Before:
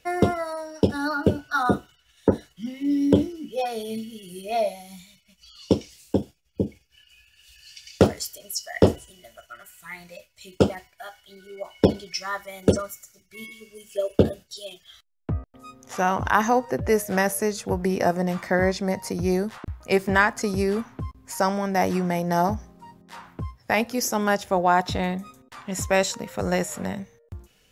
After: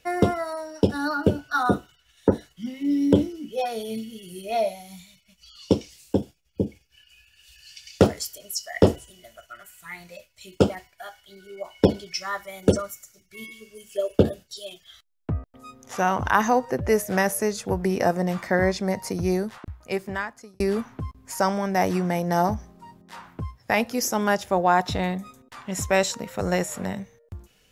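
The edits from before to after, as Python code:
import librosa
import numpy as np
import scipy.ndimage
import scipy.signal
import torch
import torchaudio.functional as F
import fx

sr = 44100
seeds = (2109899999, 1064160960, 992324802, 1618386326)

y = fx.edit(x, sr, fx.fade_out_span(start_s=19.21, length_s=1.39), tone=tone)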